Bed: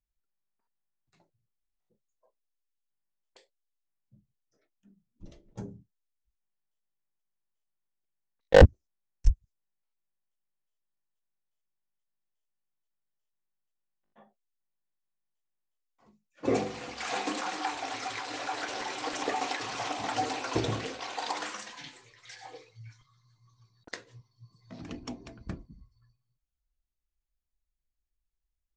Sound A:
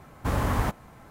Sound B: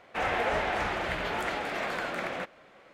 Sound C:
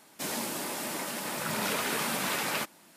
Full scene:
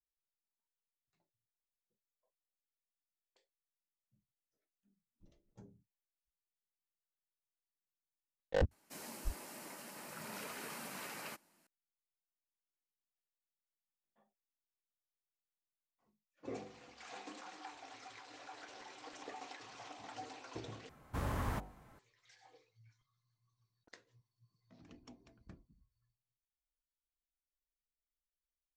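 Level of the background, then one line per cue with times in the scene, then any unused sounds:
bed -17.5 dB
8.71 add C -15.5 dB + bell 3500 Hz -7.5 dB 0.2 oct
20.89 replace with A -11.5 dB + de-hum 49.21 Hz, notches 19
not used: B

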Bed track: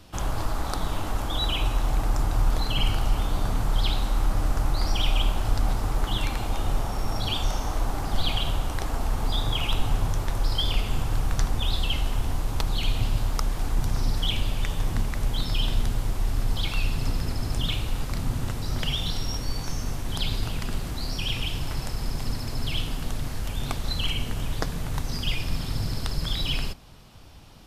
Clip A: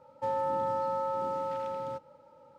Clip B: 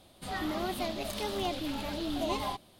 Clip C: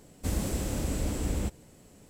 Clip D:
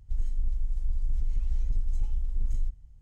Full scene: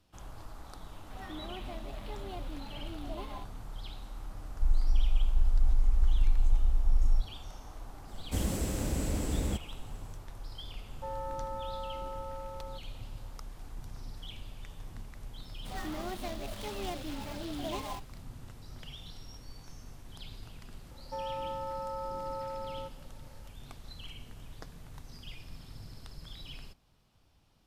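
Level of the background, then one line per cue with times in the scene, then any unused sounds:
bed track -19 dB
0.88 add B -10 dB + decimation joined by straight lines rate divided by 6×
4.51 add D -2 dB + comb 3.3 ms, depth 82%
8.08 add C -1.5 dB
10.8 add A -8.5 dB
15.43 add B -5 dB + switching dead time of 0.12 ms
20.9 add A -4.5 dB + limiter -26 dBFS

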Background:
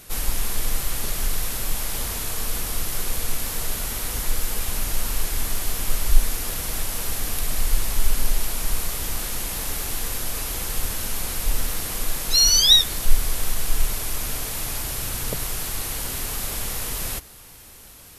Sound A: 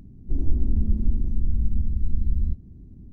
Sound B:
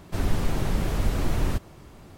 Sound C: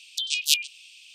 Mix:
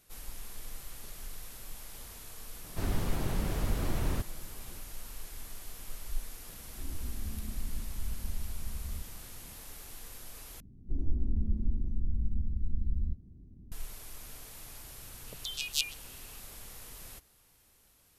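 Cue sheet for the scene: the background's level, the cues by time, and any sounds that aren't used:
background -19.5 dB
2.64 add B -6.5 dB
6.49 add A -11.5 dB + limiter -18.5 dBFS
10.6 replace with A -8.5 dB
15.27 add C -10 dB

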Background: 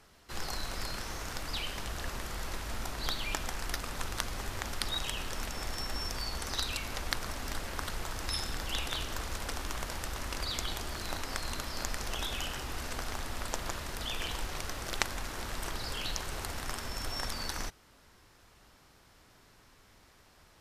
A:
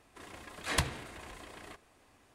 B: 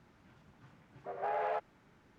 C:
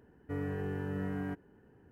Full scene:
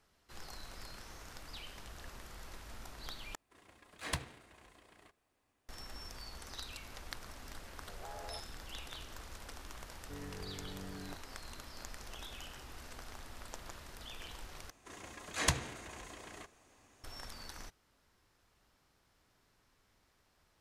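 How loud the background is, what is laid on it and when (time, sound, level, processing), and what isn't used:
background -12 dB
3.35 replace with A -6.5 dB + G.711 law mismatch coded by A
6.8 add B -14.5 dB + steep low-pass 1900 Hz
9.8 add C -11.5 dB
14.7 replace with A -1.5 dB + bell 6500 Hz +9 dB 0.37 oct

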